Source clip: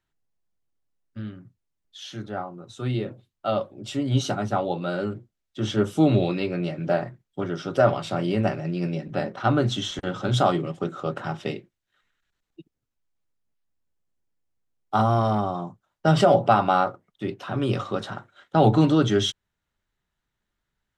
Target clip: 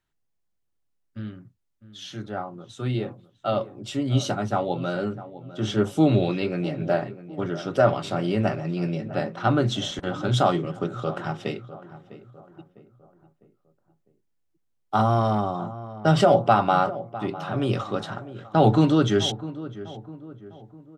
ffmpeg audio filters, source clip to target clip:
-filter_complex "[0:a]asplit=2[a][b];[b]adelay=653,lowpass=f=1.5k:p=1,volume=-15dB,asplit=2[c][d];[d]adelay=653,lowpass=f=1.5k:p=1,volume=0.46,asplit=2[e][f];[f]adelay=653,lowpass=f=1.5k:p=1,volume=0.46,asplit=2[g][h];[h]adelay=653,lowpass=f=1.5k:p=1,volume=0.46[i];[a][c][e][g][i]amix=inputs=5:normalize=0"

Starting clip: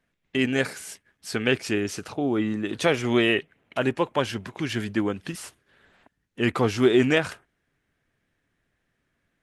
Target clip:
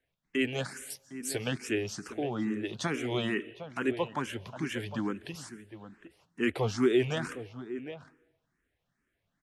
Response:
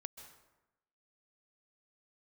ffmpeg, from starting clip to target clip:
-filter_complex "[0:a]asettb=1/sr,asplit=3[a][b][c];[a]atrim=end=0.904[d];[b]atrim=start=0.9:end=1.39,asetpts=PTS-STARTPTS,afade=t=in:d=0.004:c=qsin,afade=t=out:st=0.486:d=0.004:c=qsin,highshelf=f=4k:t=q:w=1.5:g=9[e];[c]atrim=start=1.386[f];[d][e]acrossfade=d=0.004:c1=hsin:c2=qsin[g];[g][f]acrossfade=d=0.004:c1=qsin:c2=hsin,acrossover=split=350|3000[h][i][j];[i]acompressor=threshold=-22dB:ratio=6[k];[h][k][j]amix=inputs=3:normalize=0,asplit=2[l][m];[m]adelay=758,volume=-12dB,highshelf=f=4k:g=-17.1[n];[l][n]amix=inputs=2:normalize=0,asplit=2[o][p];[1:a]atrim=start_sample=2205[q];[p][q]afir=irnorm=-1:irlink=0,volume=-7.5dB[r];[o][r]amix=inputs=2:normalize=0,asplit=2[s][t];[t]afreqshift=2.3[u];[s][u]amix=inputs=2:normalize=1,volume=-5.5dB"

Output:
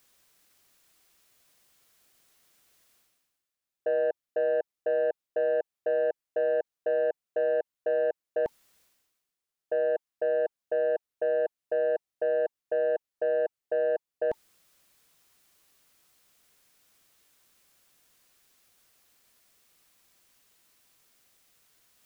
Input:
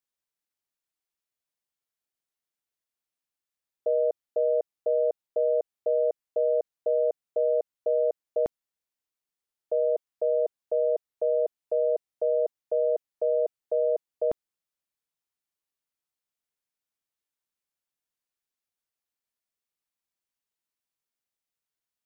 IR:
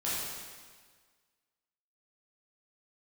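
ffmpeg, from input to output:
-af "bandreject=f=890:w=13,asoftclip=type=tanh:threshold=-21.5dB,areverse,acompressor=mode=upward:threshold=-47dB:ratio=2.5,areverse,volume=1dB"

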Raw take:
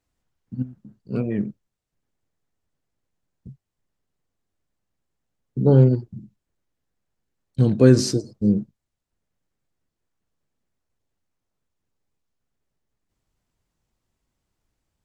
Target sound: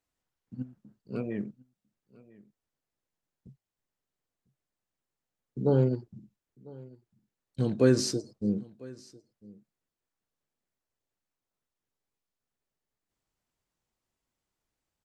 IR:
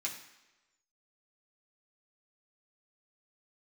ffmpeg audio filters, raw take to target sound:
-af "lowshelf=f=210:g=-9.5,aecho=1:1:999:0.075,volume=-5dB"

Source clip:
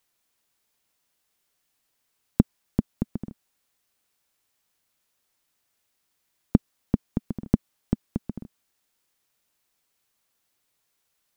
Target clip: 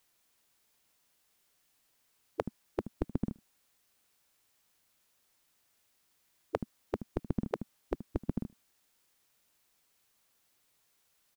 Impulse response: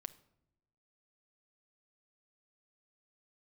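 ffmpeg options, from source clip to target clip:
-af "aecho=1:1:76:0.0631,afftfilt=real='re*lt(hypot(re,im),0.398)':imag='im*lt(hypot(re,im),0.398)':win_size=1024:overlap=0.75,volume=2dB"

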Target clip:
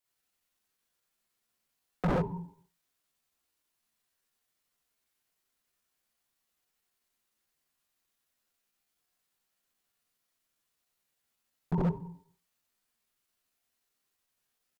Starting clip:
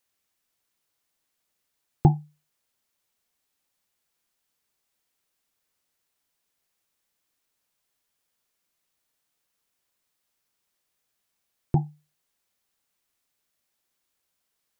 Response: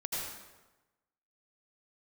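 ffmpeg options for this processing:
-filter_complex "[1:a]atrim=start_sample=2205,asetrate=79380,aresample=44100[a];[0:a][a]afir=irnorm=-1:irlink=0,asetrate=50951,aresample=44100,atempo=0.865537,aeval=exprs='0.0794*(abs(mod(val(0)/0.0794+3,4)-2)-1)':c=same"

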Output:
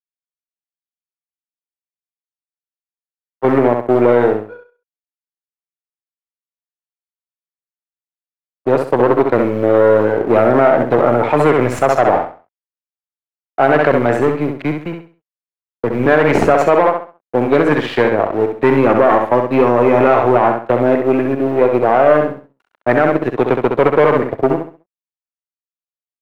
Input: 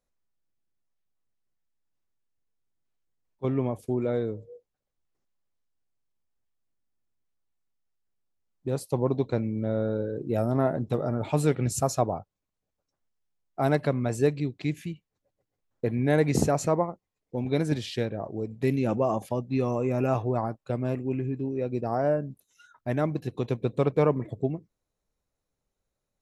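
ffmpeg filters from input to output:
-filter_complex "[0:a]adynamicequalizer=threshold=0.00447:dfrequency=1700:dqfactor=1.4:tfrequency=1700:tqfactor=1.4:attack=5:release=100:ratio=0.375:range=3:mode=boostabove:tftype=bell,aeval=exprs='(tanh(14.1*val(0)+0.6)-tanh(0.6))/14.1':c=same,asettb=1/sr,asplit=3[a][b][c];[a]atrim=end=14.194[d];[b]atrim=start=14.19:end=16.06,asetpts=PTS-STARTPTS,afade=t=in:d=0.004:c=qsin,afade=t=out:st=1.866:d=0.004:c=qsin,acrossover=split=280[e][f];[f]acompressor=threshold=-51dB:ratio=1.5[g];[e][g]amix=inputs=2:normalize=0[h];[c]atrim=start=16.056[i];[d][h]acrossfade=d=0.004:c1=hsin:c2=qsin[j];[j][i]acrossfade=d=0.004:c1=qsin:c2=hsin,aeval=exprs='sgn(val(0))*max(abs(val(0))-0.00335,0)':c=same,acrusher=bits=7:mode=log:mix=0:aa=0.000001,acrossover=split=320 2500:gain=0.158 1 0.0708[k][l][m];[k][l][m]amix=inputs=3:normalize=0,asplit=2[n][o];[o]aecho=0:1:66|132|198|264:0.501|0.145|0.0421|0.0122[p];[n][p]amix=inputs=2:normalize=0,alimiter=level_in=24.5dB:limit=-1dB:release=50:level=0:latency=1,volume=-1dB"

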